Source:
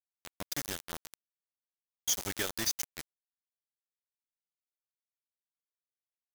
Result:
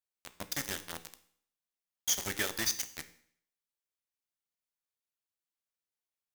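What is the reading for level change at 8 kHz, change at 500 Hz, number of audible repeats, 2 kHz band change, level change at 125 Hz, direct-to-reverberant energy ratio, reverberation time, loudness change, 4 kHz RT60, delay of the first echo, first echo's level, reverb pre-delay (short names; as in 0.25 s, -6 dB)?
+0.5 dB, -0.5 dB, none, +3.0 dB, -0.5 dB, 10.5 dB, 0.60 s, +0.5 dB, 0.60 s, none, none, 13 ms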